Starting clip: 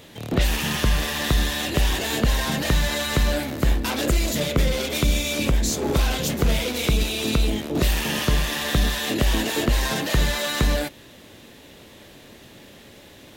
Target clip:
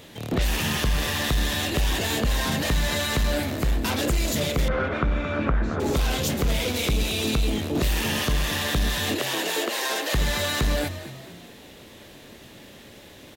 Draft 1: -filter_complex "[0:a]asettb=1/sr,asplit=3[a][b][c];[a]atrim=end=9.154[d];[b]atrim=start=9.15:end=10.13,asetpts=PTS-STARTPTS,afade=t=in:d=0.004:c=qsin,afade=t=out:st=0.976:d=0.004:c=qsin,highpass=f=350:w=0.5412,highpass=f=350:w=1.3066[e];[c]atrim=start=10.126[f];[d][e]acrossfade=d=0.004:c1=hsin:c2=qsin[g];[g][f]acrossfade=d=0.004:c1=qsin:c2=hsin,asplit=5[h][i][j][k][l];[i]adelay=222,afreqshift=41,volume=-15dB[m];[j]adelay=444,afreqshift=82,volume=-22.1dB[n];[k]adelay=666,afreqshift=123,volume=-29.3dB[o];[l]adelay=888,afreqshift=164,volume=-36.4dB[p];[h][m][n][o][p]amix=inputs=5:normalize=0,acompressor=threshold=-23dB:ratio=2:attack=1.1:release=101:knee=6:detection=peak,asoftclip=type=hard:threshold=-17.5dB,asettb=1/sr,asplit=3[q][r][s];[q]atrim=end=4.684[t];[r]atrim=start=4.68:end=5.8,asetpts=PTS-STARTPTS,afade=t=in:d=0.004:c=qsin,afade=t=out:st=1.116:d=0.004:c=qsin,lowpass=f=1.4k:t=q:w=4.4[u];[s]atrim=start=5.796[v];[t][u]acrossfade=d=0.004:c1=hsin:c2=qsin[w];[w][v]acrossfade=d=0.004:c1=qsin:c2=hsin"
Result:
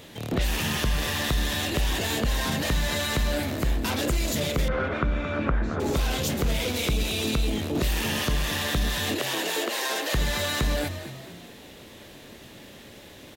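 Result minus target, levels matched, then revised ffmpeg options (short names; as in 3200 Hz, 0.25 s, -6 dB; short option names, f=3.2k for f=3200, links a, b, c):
compressor: peak gain reduction +3 dB
-filter_complex "[0:a]asettb=1/sr,asplit=3[a][b][c];[a]atrim=end=9.154[d];[b]atrim=start=9.15:end=10.13,asetpts=PTS-STARTPTS,afade=t=in:d=0.004:c=qsin,afade=t=out:st=0.976:d=0.004:c=qsin,highpass=f=350:w=0.5412,highpass=f=350:w=1.3066[e];[c]atrim=start=10.126[f];[d][e]acrossfade=d=0.004:c1=hsin:c2=qsin[g];[g][f]acrossfade=d=0.004:c1=qsin:c2=hsin,asplit=5[h][i][j][k][l];[i]adelay=222,afreqshift=41,volume=-15dB[m];[j]adelay=444,afreqshift=82,volume=-22.1dB[n];[k]adelay=666,afreqshift=123,volume=-29.3dB[o];[l]adelay=888,afreqshift=164,volume=-36.4dB[p];[h][m][n][o][p]amix=inputs=5:normalize=0,acompressor=threshold=-17dB:ratio=2:attack=1.1:release=101:knee=6:detection=peak,asoftclip=type=hard:threshold=-17.5dB,asettb=1/sr,asplit=3[q][r][s];[q]atrim=end=4.684[t];[r]atrim=start=4.68:end=5.8,asetpts=PTS-STARTPTS,afade=t=in:d=0.004:c=qsin,afade=t=out:st=1.116:d=0.004:c=qsin,lowpass=f=1.4k:t=q:w=4.4[u];[s]atrim=start=5.796[v];[t][u]acrossfade=d=0.004:c1=hsin:c2=qsin[w];[w][v]acrossfade=d=0.004:c1=qsin:c2=hsin"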